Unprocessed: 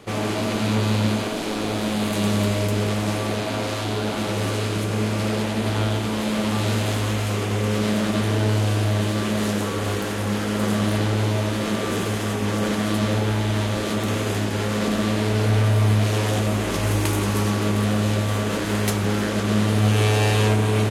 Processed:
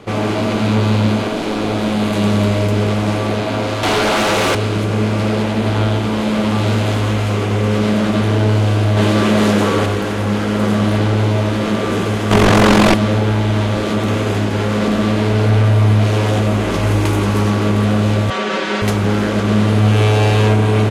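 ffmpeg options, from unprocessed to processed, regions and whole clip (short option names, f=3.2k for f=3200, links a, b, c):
-filter_complex "[0:a]asettb=1/sr,asplit=3[a][b][c];[a]atrim=end=3.834[d];[b]atrim=start=3.83:end=4.55,asetpts=PTS-STARTPTS,afade=t=in:d=0.004:c=qsin,afade=t=out:st=0.716:d=0.004:c=qsin,highpass=f=680:p=1,aeval=exprs='0.141*sin(PI/2*3.16*val(0)/0.141)':c=same[e];[c]atrim=start=4.546[f];[d][e]acrossfade=d=0.004:c1=hsin:c2=qsin[g];[g][f]acrossfade=d=0.004:c1=qsin:c2=hsin,asettb=1/sr,asplit=3[h][i][j];[h]atrim=end=8.974[k];[i]atrim=start=8.97:end=9.86,asetpts=PTS-STARTPTS,afade=t=in:d=0.004:c=qsin,afade=t=out:st=0.886:d=0.004:c=qsin,lowshelf=f=110:g=-7.5,acontrast=32,asoftclip=type=hard:threshold=-11dB[l];[j]atrim=start=9.856[m];[k][l]acrossfade=d=0.004:c1=hsin:c2=qsin[n];[n][m]acrossfade=d=0.004:c1=qsin:c2=hsin,asettb=1/sr,asplit=3[o][p][q];[o]atrim=end=12.314[r];[p]atrim=start=12.31:end=12.94,asetpts=PTS-STARTPTS,afade=t=in:d=0.004:c=qsin,afade=t=out:st=0.626:d=0.004:c=qsin,tremolo=f=45:d=0.857,aeval=exprs='0.282*sin(PI/2*5.01*val(0)/0.282)':c=same[s];[q]atrim=start=12.936[t];[r][s]acrossfade=d=0.004:c1=hsin:c2=qsin[u];[u][t]acrossfade=d=0.004:c1=qsin:c2=hsin,asettb=1/sr,asplit=3[v][w][x];[v]atrim=end=18.304[y];[w]atrim=start=18.3:end=18.82,asetpts=PTS-STARTPTS,afade=t=in:d=0.004:c=qsin,afade=t=out:st=0.516:d=0.004:c=qsin,highpass=290,lowpass=4.9k,tiltshelf=f=1.4k:g=-3.5,aecho=1:1:5.3:0.96,atrim=end_sample=22932[z];[x]atrim=start=18.816[aa];[y][z]acrossfade=d=0.004:c1=hsin:c2=qsin[ab];[ab][aa]acrossfade=d=0.004:c1=qsin:c2=hsin,lowpass=f=3k:p=1,bandreject=f=1.8k:w=24,acontrast=87"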